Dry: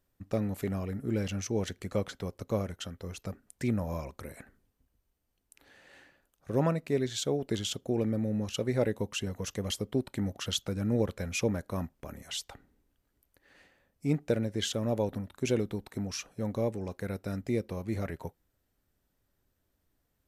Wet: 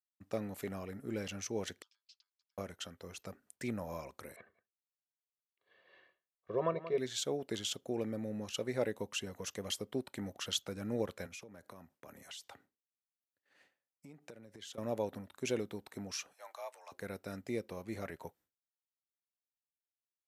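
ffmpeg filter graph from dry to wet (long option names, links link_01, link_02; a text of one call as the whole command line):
ffmpeg -i in.wav -filter_complex "[0:a]asettb=1/sr,asplit=3[link_01][link_02][link_03];[link_01]atrim=end=1.824[link_04];[link_02]atrim=start=1.82:end=2.58,asetpts=PTS-STARTPTS,afade=type=in:duration=0.004:curve=qsin,afade=type=out:start_time=0.756:duration=0.004:curve=qsin,acompressor=threshold=-41dB:ratio=4:attack=3.2:release=140:knee=1:detection=peak,aeval=exprs='val(0)*sin(2*PI*1100*n/s)':channel_layout=same,asuperpass=centerf=4500:order=4:qfactor=2.1[link_05];[link_03]atrim=start=2.576[link_06];[link_04][link_05]acrossfade=duration=0.004:curve1=hsin:curve2=qsin[link_07];[link_07][link_06]acrossfade=duration=0.004:curve1=qsin:curve2=hsin,asettb=1/sr,asplit=3[link_08][link_09][link_10];[link_08]atrim=end=4.364[link_11];[link_09]atrim=start=4.36:end=6.98,asetpts=PTS-STARTPTS,afade=type=in:duration=0.004:curve=qsin,afade=type=out:start_time=2.616:duration=0.004:curve=qsin,highpass=110,equalizer=frequency=140:width_type=q:width=4:gain=-9,equalizer=frequency=320:width_type=q:width=4:gain=7,equalizer=frequency=570:width_type=q:width=4:gain=-6,equalizer=frequency=1600:width_type=q:width=4:gain=-8,equalizer=frequency=2500:width_type=q:width=4:gain=-7,lowpass=frequency=3300:width=0.5412,lowpass=frequency=3300:width=1.3066,aecho=1:1:1.8:0.96,atrim=end_sample=115542,aecho=1:1:181:0.224,atrim=end_sample=115542[link_12];[link_10]atrim=start=6.976[link_13];[link_11][link_12]acrossfade=duration=0.004:curve1=hsin:curve2=qsin[link_14];[link_14][link_13]acrossfade=duration=0.004:curve1=qsin:curve2=hsin,asettb=1/sr,asplit=3[link_15][link_16][link_17];[link_15]atrim=end=11.264[link_18];[link_16]atrim=start=11.26:end=14.78,asetpts=PTS-STARTPTS,afade=type=in:duration=0.004:curve=qsin,afade=type=out:start_time=3.516:duration=0.004:curve=qsin,highpass=frequency=76:width=0.5412,highpass=frequency=76:width=1.3066,acompressor=threshold=-41dB:ratio=12:attack=3.2:release=140:knee=1:detection=peak[link_19];[link_17]atrim=start=14.776[link_20];[link_18][link_19]acrossfade=duration=0.004:curve1=hsin:curve2=qsin[link_21];[link_21][link_20]acrossfade=duration=0.004:curve1=qsin:curve2=hsin,asettb=1/sr,asplit=3[link_22][link_23][link_24];[link_22]atrim=end=16.334[link_25];[link_23]atrim=start=16.33:end=16.92,asetpts=PTS-STARTPTS,afade=type=in:duration=0.004:curve=qsin,afade=type=out:start_time=0.586:duration=0.004:curve=qsin,highpass=frequency=720:width=0.5412,highpass=frequency=720:width=1.3066,afreqshift=61[link_26];[link_24]atrim=start=16.916[link_27];[link_25][link_26]acrossfade=duration=0.004:curve1=hsin:curve2=qsin[link_28];[link_28][link_27]acrossfade=duration=0.004:curve1=qsin:curve2=hsin,agate=range=-33dB:threshold=-55dB:ratio=3:detection=peak,highpass=77,lowshelf=frequency=250:gain=-11,volume=-3dB" out.wav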